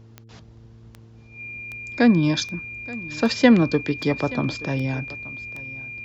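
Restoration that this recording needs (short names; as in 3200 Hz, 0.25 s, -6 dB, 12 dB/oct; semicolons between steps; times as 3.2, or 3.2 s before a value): de-click; de-hum 112.9 Hz, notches 4; notch 2400 Hz, Q 30; inverse comb 0.877 s -19.5 dB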